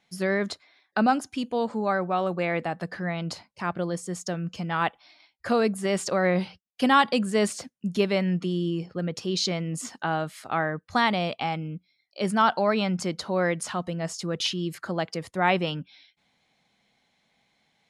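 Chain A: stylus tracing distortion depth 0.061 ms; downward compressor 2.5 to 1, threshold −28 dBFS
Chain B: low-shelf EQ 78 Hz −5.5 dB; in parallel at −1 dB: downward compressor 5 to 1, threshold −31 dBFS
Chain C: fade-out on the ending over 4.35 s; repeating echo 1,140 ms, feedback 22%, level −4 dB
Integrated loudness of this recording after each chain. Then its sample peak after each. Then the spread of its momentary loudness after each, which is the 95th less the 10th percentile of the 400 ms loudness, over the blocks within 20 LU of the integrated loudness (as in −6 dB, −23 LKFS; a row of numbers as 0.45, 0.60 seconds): −31.5, −24.5, −26.0 LKFS; −15.5, −7.5, −8.0 dBFS; 6, 8, 11 LU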